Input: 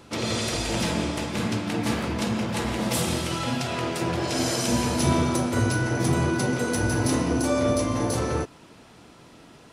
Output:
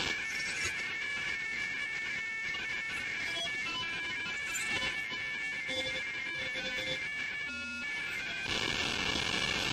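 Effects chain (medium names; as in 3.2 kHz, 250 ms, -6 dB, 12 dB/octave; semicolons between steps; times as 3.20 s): spectral contrast enhancement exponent 3.2; word length cut 8-bit, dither none; overdrive pedal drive 34 dB, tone 2.6 kHz, clips at -12.5 dBFS; hum notches 60/120/180/240/300/360 Hz; ring modulator 2 kHz; compressor with a negative ratio -29 dBFS, ratio -1; peaking EQ 1.2 kHz -12 dB 2.3 oct; comb of notches 630 Hz; trim +1.5 dB; WMA 32 kbps 32 kHz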